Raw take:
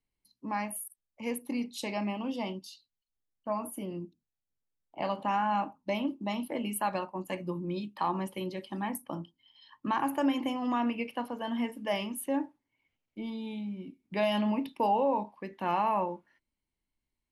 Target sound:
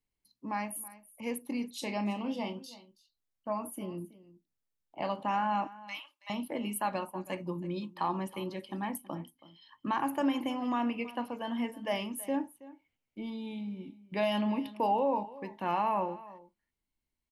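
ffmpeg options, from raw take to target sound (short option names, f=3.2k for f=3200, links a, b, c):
-filter_complex "[0:a]asettb=1/sr,asplit=3[a][b][c];[a]atrim=end=1.774[d];[b]atrim=start=1.77:end=2.69,asetpts=PTS-STARTPTS,afade=t=in:d=0.004:c=qsin,afade=t=out:st=0.916:d=0.004:c=qsin,asplit=2[e][f];[f]adelay=34,volume=-10dB[g];[e][g]amix=inputs=2:normalize=0,atrim=end_sample=40572[h];[c]atrim=start=2.686[i];[d][h]acrossfade=d=0.004:c1=hsin:c2=qsin[j];[j][i]acrossfade=d=0.004:c1=qsin:c2=hsin,asettb=1/sr,asplit=3[k][l][m];[k]atrim=end=5.674[n];[l]atrim=start=5.67:end=6.3,asetpts=PTS-STARTPTS,afade=t=in:d=0.004:c=qsin,afade=t=out:st=0.626:d=0.004:c=qsin,highpass=f=1.2k:w=0.5412,highpass=f=1.2k:w=1.3066[o];[m]atrim=start=6.296[p];[n][o]acrossfade=d=0.004:c1=hsin:c2=qsin[q];[q][p]acrossfade=d=0.004:c1=qsin:c2=hsin,aecho=1:1:325:0.119,volume=-1.5dB"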